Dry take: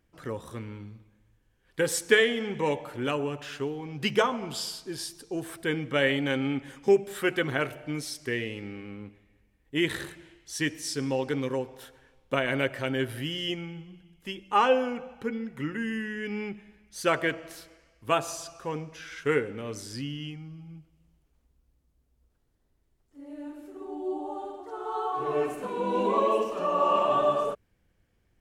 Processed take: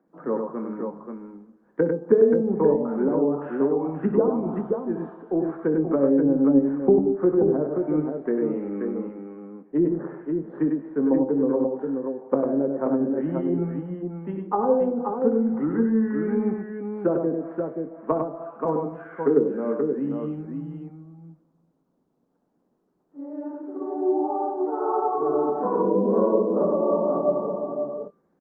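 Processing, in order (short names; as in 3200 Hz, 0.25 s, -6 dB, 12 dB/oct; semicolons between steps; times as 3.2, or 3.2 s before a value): steep high-pass 160 Hz 72 dB/oct; treble ducked by the level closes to 400 Hz, closed at -25 dBFS; inverse Chebyshev low-pass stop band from 5200 Hz, stop band 70 dB; doubler 22 ms -11.5 dB; de-hum 393.6 Hz, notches 27; on a send: tapped delay 63/99/531 ms -14/-5.5/-5 dB; on the sum: gain +8.5 dB; Opus 48 kbps 48000 Hz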